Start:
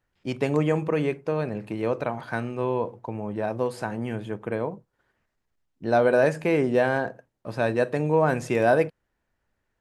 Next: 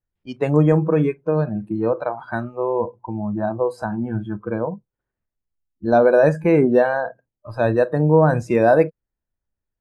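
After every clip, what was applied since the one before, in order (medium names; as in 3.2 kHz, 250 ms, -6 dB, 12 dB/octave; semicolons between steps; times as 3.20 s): spectral noise reduction 20 dB; tilt EQ -2.5 dB/octave; trim +4 dB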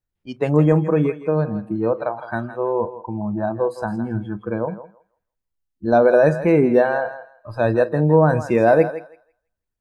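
thinning echo 164 ms, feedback 20%, high-pass 550 Hz, level -11 dB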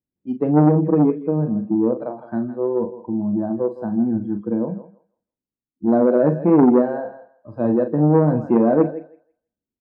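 band-pass filter 260 Hz, Q 2.3; doubling 40 ms -8.5 dB; transformer saturation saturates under 440 Hz; trim +8 dB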